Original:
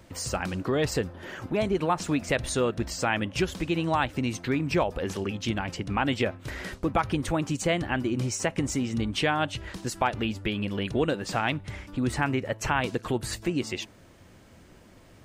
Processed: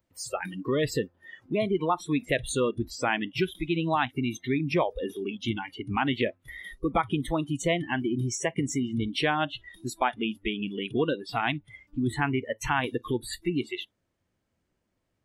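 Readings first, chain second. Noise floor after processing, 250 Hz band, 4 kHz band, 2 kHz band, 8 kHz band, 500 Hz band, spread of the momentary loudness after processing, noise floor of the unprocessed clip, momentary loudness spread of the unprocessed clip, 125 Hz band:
-78 dBFS, -0.5 dB, -1.0 dB, -0.5 dB, -3.0 dB, -0.5 dB, 7 LU, -53 dBFS, 5 LU, -2.5 dB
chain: spectral noise reduction 25 dB

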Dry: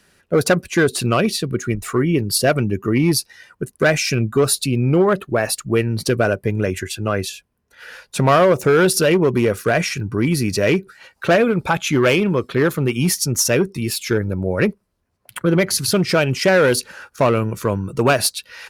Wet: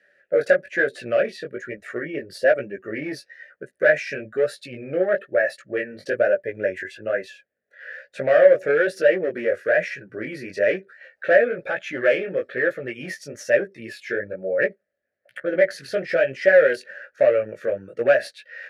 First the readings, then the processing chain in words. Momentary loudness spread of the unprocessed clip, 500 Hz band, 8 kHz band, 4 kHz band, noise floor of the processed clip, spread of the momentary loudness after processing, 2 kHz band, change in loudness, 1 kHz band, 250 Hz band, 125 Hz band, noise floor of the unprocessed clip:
8 LU, -1.0 dB, under -20 dB, -16.5 dB, -73 dBFS, 15 LU, -1.0 dB, -4.0 dB, -11.0 dB, -14.5 dB, -22.0 dB, -67 dBFS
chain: chorus 1.1 Hz, delay 15 ms, depth 6.7 ms; in parallel at -5.5 dB: one-sided clip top -17 dBFS; on the sum: double band-pass 1000 Hz, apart 1.6 oct; notch 1000 Hz, Q 8.7; gain +4.5 dB

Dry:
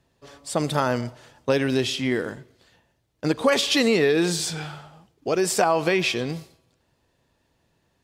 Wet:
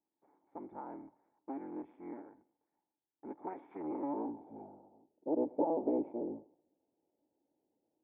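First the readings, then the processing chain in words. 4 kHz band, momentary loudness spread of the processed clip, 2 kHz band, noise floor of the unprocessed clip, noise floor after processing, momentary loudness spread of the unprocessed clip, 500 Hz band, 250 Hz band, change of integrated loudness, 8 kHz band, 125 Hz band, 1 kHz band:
under -40 dB, 20 LU, under -35 dB, -70 dBFS, under -85 dBFS, 16 LU, -16.5 dB, -13.0 dB, -16.0 dB, under -40 dB, -30.0 dB, -15.5 dB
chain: cycle switcher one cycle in 3, inverted; vocal tract filter u; band-pass sweep 1600 Hz -> 560 Hz, 3.73–4.75; gain +6.5 dB

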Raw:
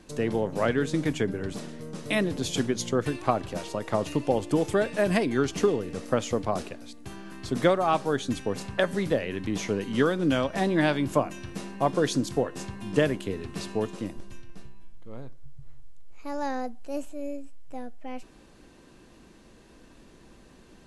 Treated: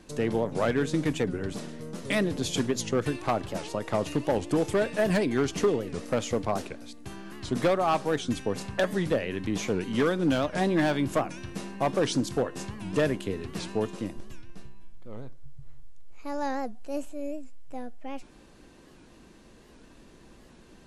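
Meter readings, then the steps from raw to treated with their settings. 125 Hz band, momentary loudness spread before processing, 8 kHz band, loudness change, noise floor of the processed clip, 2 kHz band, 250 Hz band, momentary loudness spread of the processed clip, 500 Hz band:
-0.5 dB, 17 LU, 0.0 dB, -1.0 dB, -54 dBFS, -1.0 dB, -0.5 dB, 16 LU, -1.0 dB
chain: overloaded stage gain 18 dB; record warp 78 rpm, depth 160 cents

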